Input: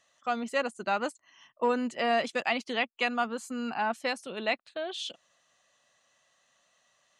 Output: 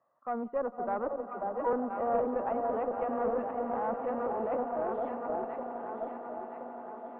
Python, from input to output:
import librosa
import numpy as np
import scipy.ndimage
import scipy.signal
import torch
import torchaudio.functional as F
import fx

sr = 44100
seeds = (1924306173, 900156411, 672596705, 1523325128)

p1 = scipy.signal.sosfilt(scipy.signal.ellip(3, 1.0, 60, [110.0, 1100.0], 'bandpass', fs=sr, output='sos'), x)
p2 = fx.low_shelf(p1, sr, hz=380.0, db=-5.0)
p3 = fx.echo_alternate(p2, sr, ms=511, hz=870.0, feedback_pct=71, wet_db=-4)
p4 = fx.over_compress(p3, sr, threshold_db=-38.0, ratio=-1.0)
p5 = p3 + F.gain(torch.from_numpy(p4), -2.0).numpy()
p6 = fx.dispersion(p5, sr, late='lows', ms=69.0, hz=490.0, at=(1.08, 1.73))
p7 = fx.transient(p6, sr, attack_db=-10, sustain_db=6, at=(3.13, 4.63))
p8 = fx.echo_swell(p7, sr, ms=91, loudest=8, wet_db=-16.5)
p9 = fx.dynamic_eq(p8, sr, hz=490.0, q=1.4, threshold_db=-35.0, ratio=4.0, max_db=5)
p10 = fx.cheby_harmonics(p9, sr, harmonics=(4, 8), levels_db=(-21, -43), full_scale_db=-6.5)
y = F.gain(torch.from_numpy(p10), -5.0).numpy()